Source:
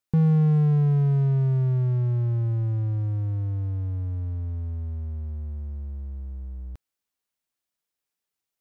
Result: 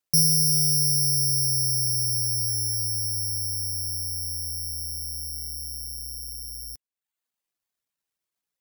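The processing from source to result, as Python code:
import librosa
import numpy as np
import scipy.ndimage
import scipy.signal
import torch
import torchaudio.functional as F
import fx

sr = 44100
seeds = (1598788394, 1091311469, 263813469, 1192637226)

y = (np.kron(x[::8], np.eye(8)[0]) * 8)[:len(x)]
y = fx.dereverb_blind(y, sr, rt60_s=0.68)
y = y * librosa.db_to_amplitude(-8.5)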